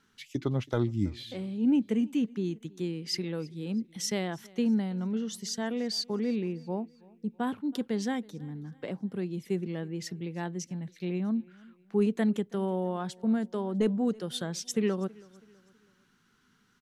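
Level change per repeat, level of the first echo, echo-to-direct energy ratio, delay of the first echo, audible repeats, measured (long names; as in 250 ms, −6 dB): −7.5 dB, −24.0 dB, −23.0 dB, 325 ms, 2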